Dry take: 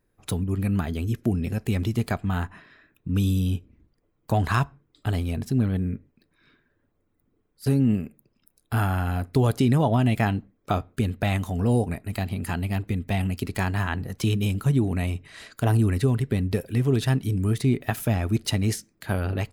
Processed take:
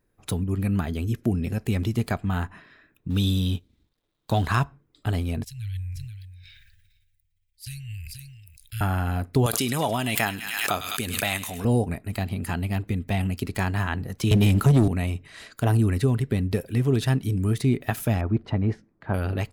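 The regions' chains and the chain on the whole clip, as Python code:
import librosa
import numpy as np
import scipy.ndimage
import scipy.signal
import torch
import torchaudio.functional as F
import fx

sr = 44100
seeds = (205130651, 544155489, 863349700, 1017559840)

y = fx.chain(x, sr, fx.law_mismatch(coded='A'),
    fx.peak_eq(hz=3700.0, db=13.0, octaves=0.45), at=(3.1, 4.46))
y = fx.chain(y, sr, fx.cheby2_bandstop(low_hz=240.0, high_hz=890.0, order=4, stop_db=60),
    fx.echo_single(ms=482, db=-18.5),
    fx.sustainer(db_per_s=29.0), at=(5.44, 8.81))
y = fx.chain(y, sr, fx.tilt_eq(slope=3.5),
    fx.echo_wet_highpass(ms=103, feedback_pct=51, hz=2000.0, wet_db=-12),
    fx.pre_swell(db_per_s=42.0), at=(9.46, 11.65))
y = fx.chain(y, sr, fx.leveller(passes=2),
    fx.band_squash(depth_pct=70), at=(14.31, 14.88))
y = fx.chain(y, sr, fx.lowpass(hz=1400.0, slope=12),
    fx.peak_eq(hz=940.0, db=4.0, octaves=0.75), at=(18.21, 19.14))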